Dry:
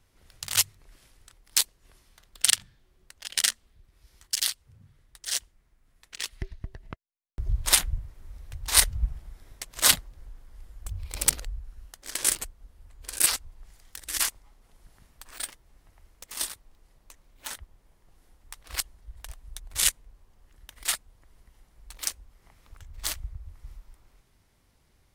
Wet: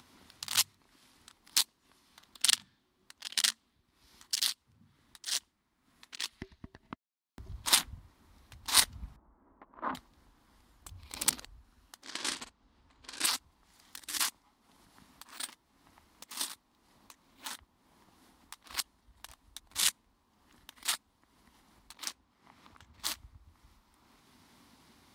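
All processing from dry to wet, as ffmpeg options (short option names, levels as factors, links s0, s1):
-filter_complex "[0:a]asettb=1/sr,asplit=3[s0][s1][s2];[s0]atrim=end=9.164[s3];[s1]atrim=start=9.16:end=9.95,asetpts=PTS-STARTPTS,afade=t=in:d=0.004:c=qsin,afade=t=out:st=0.786:d=0.004:c=qsin,lowpass=f=1200:w=0.5412,lowpass=f=1200:w=1.3066,equalizer=f=120:t=o:w=0.76:g=-14.5,bandreject=f=740:w=15[s4];[s2]atrim=start=9.946[s5];[s3][s4]acrossfade=d=0.004:c1=hsin:c2=qsin[s6];[s6][s5]acrossfade=d=0.004:c1=qsin:c2=hsin,asettb=1/sr,asplit=3[s7][s8][s9];[s7]atrim=end=12.044[s10];[s8]atrim=start=12.04:end=13.25,asetpts=PTS-STARTPTS,afade=t=in:d=0.004:c=qsin,afade=t=out:st=1.206:d=0.004:c=qsin,lowpass=5600,asplit=2[s11][s12];[s12]adelay=49,volume=0.282[s13];[s11][s13]amix=inputs=2:normalize=0,atrim=end_sample=53361[s14];[s9]atrim=start=13.246[s15];[s10][s14]acrossfade=d=0.004:c1=hsin:c2=qsin[s16];[s16][s15]acrossfade=d=0.004:c1=qsin:c2=hsin,asettb=1/sr,asplit=3[s17][s18][s19];[s17]atrim=end=21.934[s20];[s18]atrim=start=21.93:end=23,asetpts=PTS-STARTPTS,afade=t=in:d=0.004:c=qsin,afade=t=out:st=1.066:d=0.004:c=qsin,highpass=65,highshelf=f=6400:g=-8.5[s21];[s19]atrim=start=22.996[s22];[s20][s21]acrossfade=d=0.004:c1=hsin:c2=qsin[s23];[s23][s22]acrossfade=d=0.004:c1=qsin:c2=hsin,equalizer=f=125:t=o:w=1:g=-5,equalizer=f=250:t=o:w=1:g=11,equalizer=f=500:t=o:w=1:g=-5,equalizer=f=1000:t=o:w=1:g=8,equalizer=f=4000:t=o:w=1:g=6,acompressor=mode=upward:threshold=0.01:ratio=2.5,highpass=98,volume=0.422"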